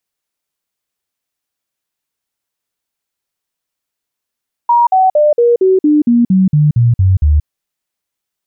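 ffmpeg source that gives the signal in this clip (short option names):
-f lavfi -i "aevalsrc='0.501*clip(min(mod(t,0.23),0.18-mod(t,0.23))/0.005,0,1)*sin(2*PI*950*pow(2,-floor(t/0.23)/3)*mod(t,0.23))':d=2.76:s=44100"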